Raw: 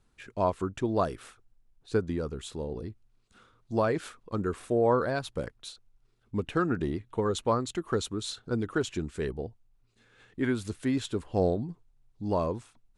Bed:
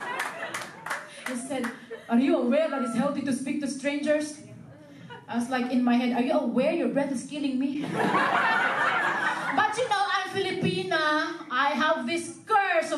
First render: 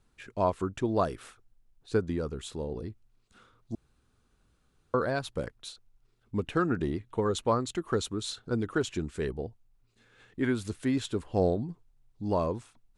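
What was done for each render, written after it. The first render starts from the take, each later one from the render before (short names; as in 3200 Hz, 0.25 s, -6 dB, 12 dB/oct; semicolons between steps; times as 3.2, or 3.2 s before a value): 3.75–4.94 room tone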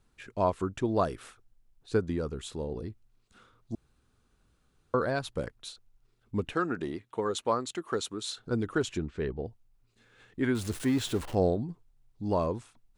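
6.53–8.39 HPF 350 Hz 6 dB/oct; 8.98–9.45 air absorption 180 m; 10.55–11.35 zero-crossing step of -37 dBFS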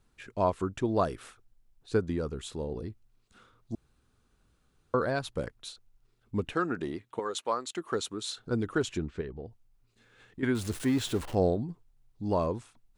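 7.19–7.76 HPF 580 Hz 6 dB/oct; 9.21–10.43 compressor 2:1, threshold -41 dBFS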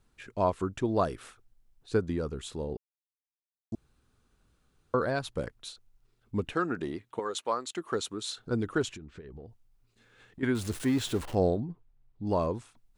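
2.77–3.72 mute; 8.93–10.41 compressor 10:1, threshold -41 dBFS; 11.6–12.27 air absorption 290 m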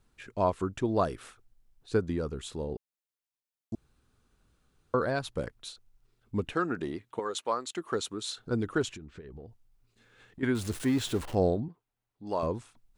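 11.68–12.43 HPF 550 Hz 6 dB/oct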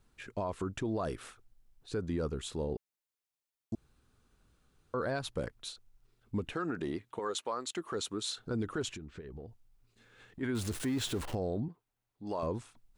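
limiter -26 dBFS, peak gain reduction 11.5 dB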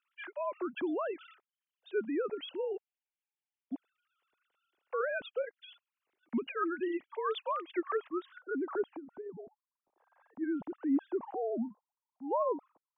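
sine-wave speech; low-pass sweep 3000 Hz -> 890 Hz, 7.42–8.86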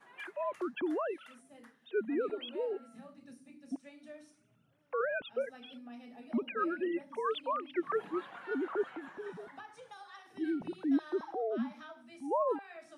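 add bed -26 dB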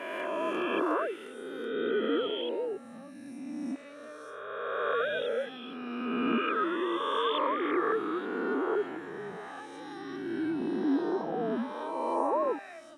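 spectral swells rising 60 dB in 2.41 s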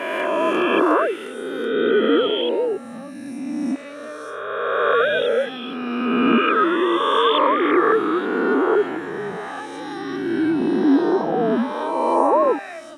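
gain +12 dB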